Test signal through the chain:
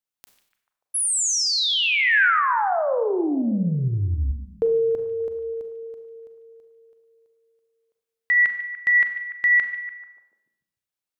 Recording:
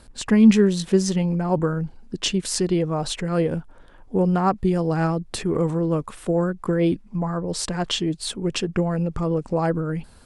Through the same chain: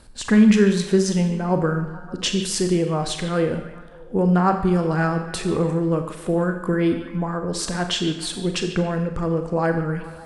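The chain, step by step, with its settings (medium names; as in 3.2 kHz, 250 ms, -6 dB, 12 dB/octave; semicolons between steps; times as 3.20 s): dynamic bell 1.6 kHz, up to +6 dB, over -40 dBFS, Q 2.4; on a send: repeats whose band climbs or falls 146 ms, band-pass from 2.9 kHz, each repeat -0.7 oct, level -10.5 dB; on the sum: Schroeder reverb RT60 0.77 s, combs from 30 ms, DRR 6.5 dB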